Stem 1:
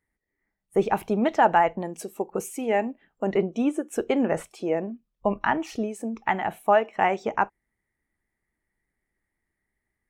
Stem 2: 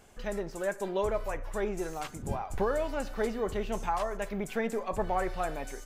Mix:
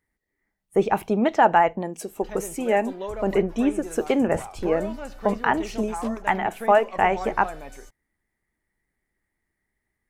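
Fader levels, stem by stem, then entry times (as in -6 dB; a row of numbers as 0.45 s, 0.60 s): +2.0 dB, -2.5 dB; 0.00 s, 2.05 s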